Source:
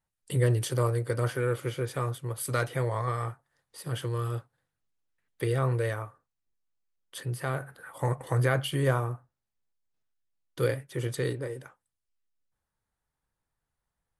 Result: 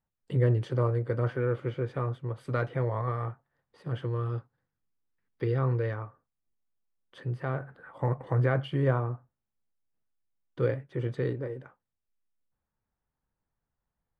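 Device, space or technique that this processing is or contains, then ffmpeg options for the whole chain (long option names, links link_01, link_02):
phone in a pocket: -filter_complex "[0:a]lowpass=3400,equalizer=frequency=220:width_type=o:width=0.54:gain=4,highshelf=frequency=2100:gain=-10.5,asettb=1/sr,asplit=3[link_01][link_02][link_03];[link_01]atrim=end=4.294[link_04];[link_02]atrim=start=4.29:end=6.05,asetpts=PTS-STARTPTS,afade=type=in:duration=0.004:curve=qsin,afade=type=out:start_time=1.756:duration=0.004:curve=qsin,equalizer=frequency=630:width_type=o:width=0.33:gain=-6,equalizer=frequency=5000:width_type=o:width=0.33:gain=10,equalizer=frequency=8000:width_type=o:width=0.33:gain=-8[link_05];[link_03]atrim=start=6.046[link_06];[link_04][link_05]acrossfade=duration=0.004:curve1=hsin:curve2=qsin[link_07];[link_07][link_06]acrossfade=duration=0.004:curve1=qsin:curve2=hsin"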